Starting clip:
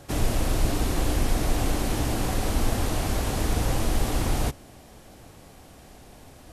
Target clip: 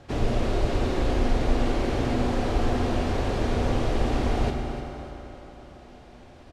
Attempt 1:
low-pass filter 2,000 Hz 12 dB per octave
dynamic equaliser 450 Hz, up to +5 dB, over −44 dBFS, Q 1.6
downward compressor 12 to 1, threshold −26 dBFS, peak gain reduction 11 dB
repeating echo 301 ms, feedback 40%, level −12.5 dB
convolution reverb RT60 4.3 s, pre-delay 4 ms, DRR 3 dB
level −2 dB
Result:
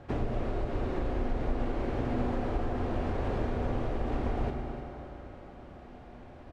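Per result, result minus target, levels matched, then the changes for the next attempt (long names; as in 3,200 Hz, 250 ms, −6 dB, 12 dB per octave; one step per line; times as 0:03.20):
downward compressor: peak gain reduction +11 dB; 4,000 Hz band −8.0 dB
remove: downward compressor 12 to 1, threshold −26 dBFS, peak gain reduction 11 dB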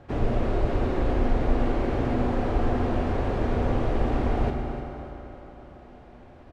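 4,000 Hz band −8.0 dB
change: low-pass filter 4,100 Hz 12 dB per octave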